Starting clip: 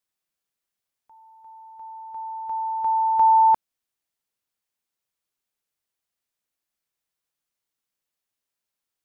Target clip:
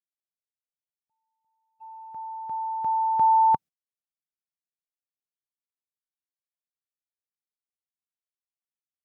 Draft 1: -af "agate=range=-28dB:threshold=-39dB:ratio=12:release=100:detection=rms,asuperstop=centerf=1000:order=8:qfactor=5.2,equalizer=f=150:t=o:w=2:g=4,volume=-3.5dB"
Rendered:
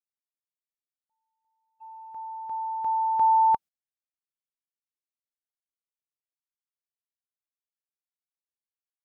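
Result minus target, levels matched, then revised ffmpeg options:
125 Hz band -8.5 dB
-af "agate=range=-28dB:threshold=-39dB:ratio=12:release=100:detection=rms,asuperstop=centerf=1000:order=8:qfactor=5.2,equalizer=f=150:t=o:w=2:g=15,volume=-3.5dB"

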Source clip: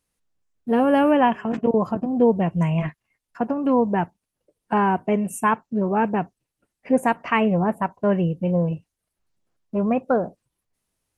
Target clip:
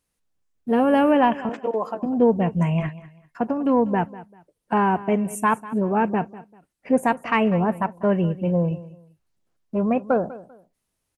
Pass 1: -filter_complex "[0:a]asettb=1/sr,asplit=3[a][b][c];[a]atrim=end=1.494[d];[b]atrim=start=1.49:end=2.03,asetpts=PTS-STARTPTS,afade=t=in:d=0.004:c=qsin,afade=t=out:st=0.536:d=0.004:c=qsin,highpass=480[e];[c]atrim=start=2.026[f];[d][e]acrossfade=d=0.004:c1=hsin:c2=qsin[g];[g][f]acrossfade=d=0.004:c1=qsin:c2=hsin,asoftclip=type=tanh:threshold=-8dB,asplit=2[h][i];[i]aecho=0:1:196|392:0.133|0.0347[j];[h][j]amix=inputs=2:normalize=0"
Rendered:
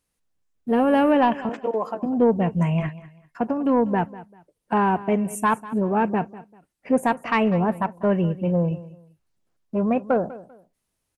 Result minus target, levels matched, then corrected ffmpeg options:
soft clip: distortion +11 dB
-filter_complex "[0:a]asettb=1/sr,asplit=3[a][b][c];[a]atrim=end=1.494[d];[b]atrim=start=1.49:end=2.03,asetpts=PTS-STARTPTS,afade=t=in:d=0.004:c=qsin,afade=t=out:st=0.536:d=0.004:c=qsin,highpass=480[e];[c]atrim=start=2.026[f];[d][e]acrossfade=d=0.004:c1=hsin:c2=qsin[g];[g][f]acrossfade=d=0.004:c1=qsin:c2=hsin,asoftclip=type=tanh:threshold=-2dB,asplit=2[h][i];[i]aecho=0:1:196|392:0.133|0.0347[j];[h][j]amix=inputs=2:normalize=0"

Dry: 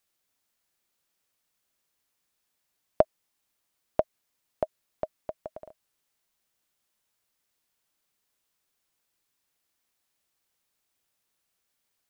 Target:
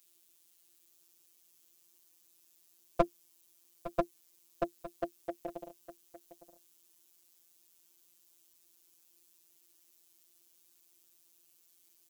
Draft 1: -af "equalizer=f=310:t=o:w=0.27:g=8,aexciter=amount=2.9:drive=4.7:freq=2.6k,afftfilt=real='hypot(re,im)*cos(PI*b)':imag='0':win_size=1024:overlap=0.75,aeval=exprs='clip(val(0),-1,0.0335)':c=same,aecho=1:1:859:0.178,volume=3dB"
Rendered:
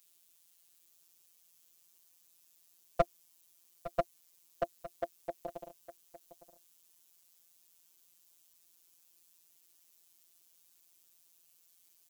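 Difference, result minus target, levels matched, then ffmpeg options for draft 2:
250 Hz band -7.5 dB
-af "equalizer=f=310:t=o:w=0.27:g=18,aexciter=amount=2.9:drive=4.7:freq=2.6k,afftfilt=real='hypot(re,im)*cos(PI*b)':imag='0':win_size=1024:overlap=0.75,aeval=exprs='clip(val(0),-1,0.0335)':c=same,aecho=1:1:859:0.178,volume=3dB"

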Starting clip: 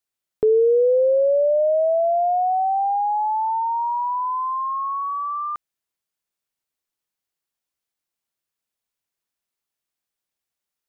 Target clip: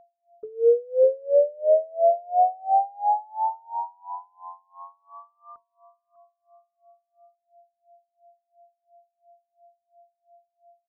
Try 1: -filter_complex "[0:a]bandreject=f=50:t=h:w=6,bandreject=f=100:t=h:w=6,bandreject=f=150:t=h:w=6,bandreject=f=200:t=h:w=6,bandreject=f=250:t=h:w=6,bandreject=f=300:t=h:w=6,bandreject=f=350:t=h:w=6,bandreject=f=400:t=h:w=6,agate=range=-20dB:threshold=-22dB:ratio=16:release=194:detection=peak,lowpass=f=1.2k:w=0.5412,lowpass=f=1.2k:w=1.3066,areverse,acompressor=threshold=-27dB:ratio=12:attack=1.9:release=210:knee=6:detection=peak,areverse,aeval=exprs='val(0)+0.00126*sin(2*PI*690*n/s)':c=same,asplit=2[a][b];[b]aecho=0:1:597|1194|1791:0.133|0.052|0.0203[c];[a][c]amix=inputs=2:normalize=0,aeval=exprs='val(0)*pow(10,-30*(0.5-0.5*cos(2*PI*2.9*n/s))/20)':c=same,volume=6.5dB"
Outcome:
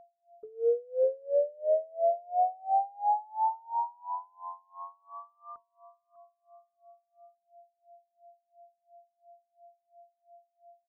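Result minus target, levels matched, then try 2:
compressor: peak gain reduction +8.5 dB
-filter_complex "[0:a]bandreject=f=50:t=h:w=6,bandreject=f=100:t=h:w=6,bandreject=f=150:t=h:w=6,bandreject=f=200:t=h:w=6,bandreject=f=250:t=h:w=6,bandreject=f=300:t=h:w=6,bandreject=f=350:t=h:w=6,bandreject=f=400:t=h:w=6,agate=range=-20dB:threshold=-22dB:ratio=16:release=194:detection=peak,lowpass=f=1.2k:w=0.5412,lowpass=f=1.2k:w=1.3066,areverse,acompressor=threshold=-17.5dB:ratio=12:attack=1.9:release=210:knee=6:detection=peak,areverse,aeval=exprs='val(0)+0.00126*sin(2*PI*690*n/s)':c=same,asplit=2[a][b];[b]aecho=0:1:597|1194|1791:0.133|0.052|0.0203[c];[a][c]amix=inputs=2:normalize=0,aeval=exprs='val(0)*pow(10,-30*(0.5-0.5*cos(2*PI*2.9*n/s))/20)':c=same,volume=6.5dB"

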